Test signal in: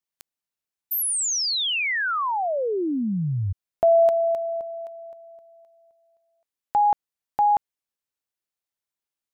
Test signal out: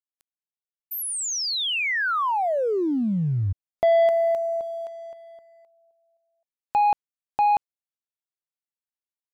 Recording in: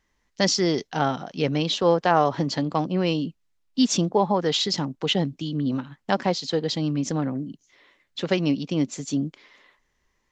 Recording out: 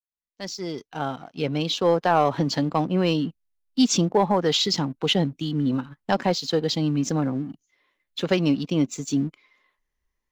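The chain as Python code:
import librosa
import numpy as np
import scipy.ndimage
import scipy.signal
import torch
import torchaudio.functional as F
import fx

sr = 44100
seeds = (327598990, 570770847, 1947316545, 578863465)

y = fx.fade_in_head(x, sr, length_s=2.29)
y = fx.noise_reduce_blind(y, sr, reduce_db=9)
y = fx.leveller(y, sr, passes=1)
y = y * librosa.db_to_amplitude(-2.0)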